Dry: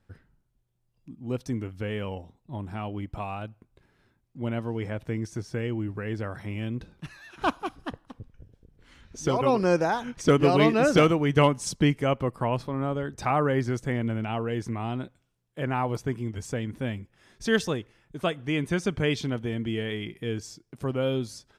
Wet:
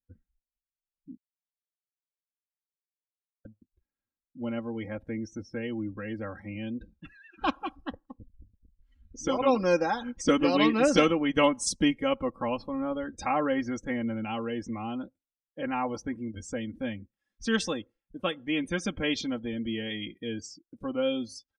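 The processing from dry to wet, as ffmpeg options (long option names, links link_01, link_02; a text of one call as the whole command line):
ffmpeg -i in.wav -filter_complex "[0:a]asplit=3[link_01][link_02][link_03];[link_01]atrim=end=1.17,asetpts=PTS-STARTPTS,afade=type=out:start_time=1.166:duration=0.004:curve=hsin[link_04];[link_02]atrim=start=1.17:end=3.45,asetpts=PTS-STARTPTS,volume=0[link_05];[link_03]atrim=start=3.45,asetpts=PTS-STARTPTS,afade=type=in:duration=0.004:curve=hsin[link_06];[link_04][link_05][link_06]concat=n=3:v=0:a=1,afftdn=noise_reduction=28:noise_floor=-44,aecho=1:1:3.7:0.86,adynamicequalizer=threshold=0.00891:dfrequency=2500:dqfactor=0.7:tfrequency=2500:tqfactor=0.7:attack=5:release=100:ratio=0.375:range=3:mode=boostabove:tftype=highshelf,volume=-5dB" out.wav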